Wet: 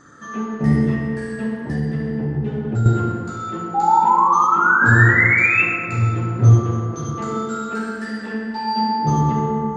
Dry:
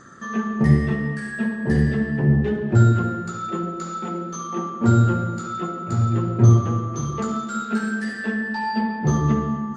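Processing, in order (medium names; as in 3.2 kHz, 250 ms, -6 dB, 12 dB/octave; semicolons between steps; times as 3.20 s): 3.74–5.64 s: painted sound rise 790–2700 Hz -16 dBFS; FDN reverb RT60 2.3 s, low-frequency decay 0.75×, high-frequency decay 0.45×, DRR -2.5 dB; 1.63–2.86 s: compression 2:1, threshold -19 dBFS, peak gain reduction 8 dB; trim -3.5 dB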